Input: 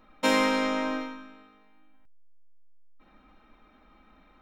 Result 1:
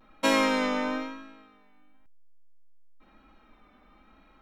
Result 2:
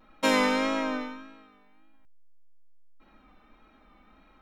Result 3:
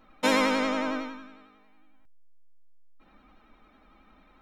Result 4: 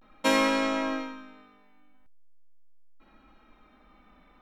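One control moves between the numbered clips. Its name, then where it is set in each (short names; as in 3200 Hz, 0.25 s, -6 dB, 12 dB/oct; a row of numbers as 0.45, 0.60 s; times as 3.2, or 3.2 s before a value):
vibrato, rate: 1, 1.7, 11, 0.41 Hz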